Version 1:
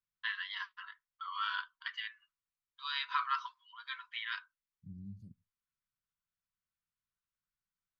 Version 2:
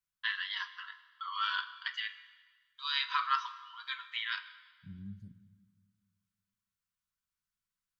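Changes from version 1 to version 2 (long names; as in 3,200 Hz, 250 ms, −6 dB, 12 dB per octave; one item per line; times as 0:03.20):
first voice: remove low-pass filter 2,800 Hz 6 dB per octave
reverb: on, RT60 1.5 s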